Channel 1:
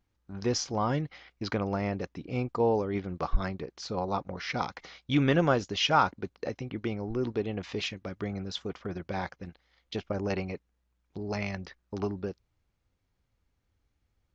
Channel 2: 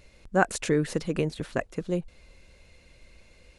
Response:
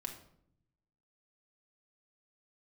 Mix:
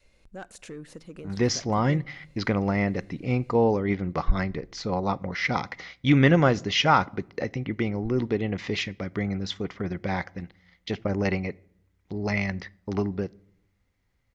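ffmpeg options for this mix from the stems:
-filter_complex "[0:a]equalizer=frequency=2000:width_type=o:width=0.23:gain=11,adelay=950,volume=2dB,asplit=2[link_01][link_02];[link_02]volume=-14.5dB[link_03];[1:a]acompressor=threshold=-41dB:ratio=1.5,asoftclip=type=tanh:threshold=-24dB,volume=-8.5dB,asplit=2[link_04][link_05];[link_05]volume=-13.5dB[link_06];[2:a]atrim=start_sample=2205[link_07];[link_03][link_06]amix=inputs=2:normalize=0[link_08];[link_08][link_07]afir=irnorm=-1:irlink=0[link_09];[link_01][link_04][link_09]amix=inputs=3:normalize=0,adynamicequalizer=threshold=0.01:dfrequency=150:dqfactor=0.82:tfrequency=150:tqfactor=0.82:attack=5:release=100:ratio=0.375:range=2.5:mode=boostabove:tftype=bell"

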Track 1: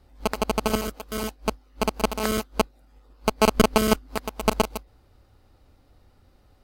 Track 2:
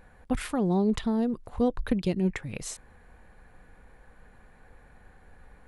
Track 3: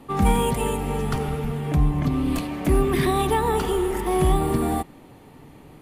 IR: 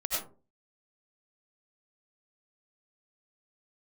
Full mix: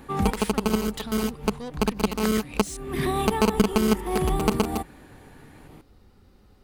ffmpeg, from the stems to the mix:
-filter_complex "[0:a]equalizer=frequency=200:width_type=o:width=0.33:gain=10,equalizer=frequency=400:width_type=o:width=0.33:gain=6,equalizer=frequency=630:width_type=o:width=0.33:gain=-7,volume=1.5dB[link_01];[1:a]tiltshelf=frequency=1300:gain=-9.5,asoftclip=type=tanh:threshold=-32.5dB,volume=2dB,asplit=2[link_02][link_03];[2:a]volume=-0.5dB[link_04];[link_03]apad=whole_len=256268[link_05];[link_04][link_05]sidechaincompress=threshold=-55dB:ratio=8:attack=28:release=209[link_06];[link_01][link_02][link_06]amix=inputs=3:normalize=0,acompressor=threshold=-21dB:ratio=2"

